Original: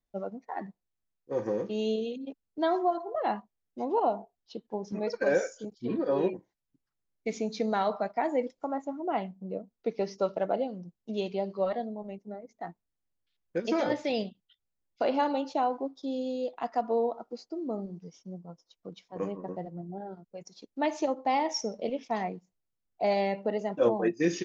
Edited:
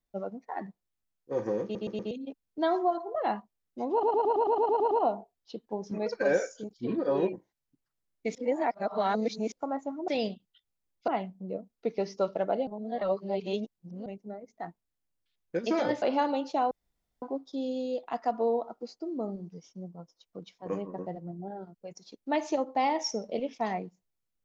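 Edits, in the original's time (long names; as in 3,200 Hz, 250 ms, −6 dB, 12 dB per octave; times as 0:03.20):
0:01.63: stutter in place 0.12 s, 4 plays
0:03.92: stutter 0.11 s, 10 plays
0:07.36–0:08.53: reverse
0:10.68–0:12.07: reverse
0:14.03–0:15.03: move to 0:09.09
0:15.72: splice in room tone 0.51 s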